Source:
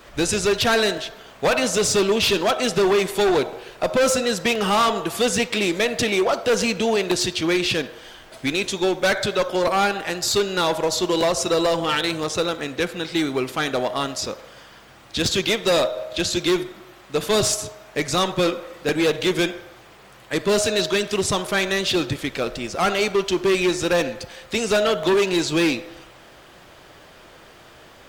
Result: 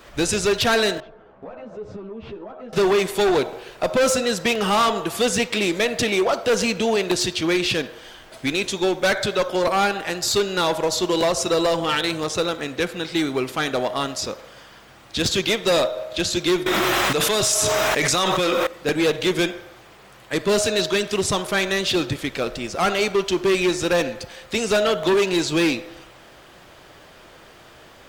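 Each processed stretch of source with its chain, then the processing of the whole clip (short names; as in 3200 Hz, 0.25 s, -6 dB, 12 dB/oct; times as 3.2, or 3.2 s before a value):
1–2.73 LPF 1000 Hz + compressor 12:1, threshold -30 dBFS + ensemble effect
16.66–18.67 low shelf 480 Hz -8 dB + notch 4500 Hz, Q 16 + fast leveller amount 100%
whole clip: dry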